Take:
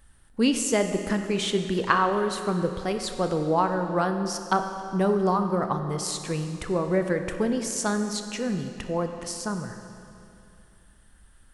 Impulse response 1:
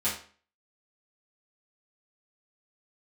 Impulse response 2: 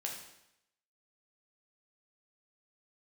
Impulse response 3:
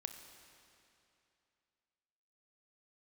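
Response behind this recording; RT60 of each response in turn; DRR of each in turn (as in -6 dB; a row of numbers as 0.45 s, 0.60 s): 3; 0.45 s, 0.80 s, 2.7 s; -10.0 dB, -1.0 dB, 6.0 dB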